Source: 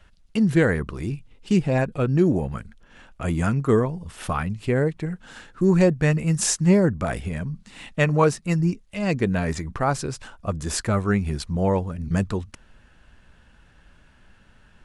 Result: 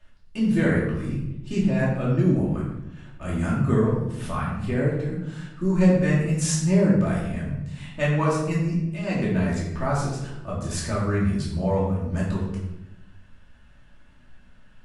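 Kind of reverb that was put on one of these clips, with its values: simulated room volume 330 m³, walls mixed, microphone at 2.6 m; trim -10 dB

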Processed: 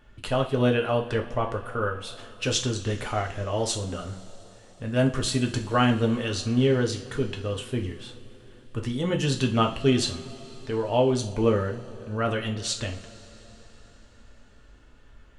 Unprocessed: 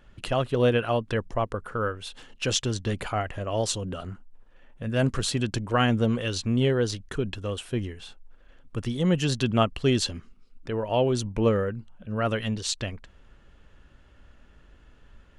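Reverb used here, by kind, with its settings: two-slope reverb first 0.36 s, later 4.7 s, from -22 dB, DRR 1.5 dB; trim -1.5 dB

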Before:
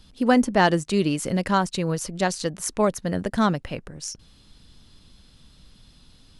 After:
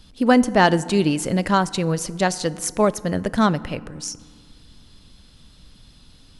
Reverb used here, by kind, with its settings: FDN reverb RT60 1.8 s, low-frequency decay 1.35×, high-frequency decay 0.5×, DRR 17.5 dB; trim +3 dB

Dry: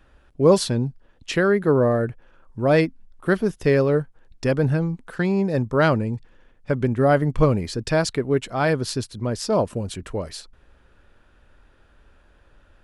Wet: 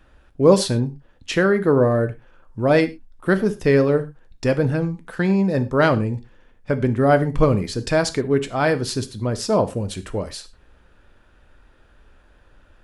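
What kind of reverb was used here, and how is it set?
gated-style reverb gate 140 ms falling, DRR 9.5 dB; trim +1.5 dB

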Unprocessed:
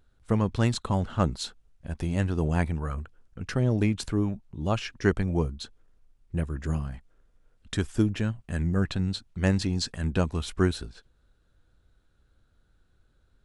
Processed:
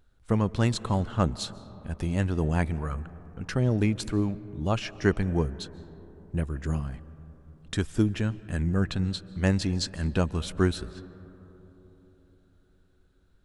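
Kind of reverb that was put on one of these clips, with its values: algorithmic reverb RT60 4.1 s, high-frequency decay 0.25×, pre-delay 105 ms, DRR 18 dB

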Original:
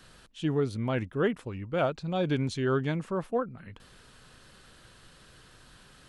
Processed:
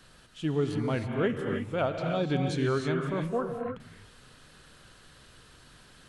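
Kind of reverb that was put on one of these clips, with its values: gated-style reverb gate 340 ms rising, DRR 2.5 dB; trim -1.5 dB

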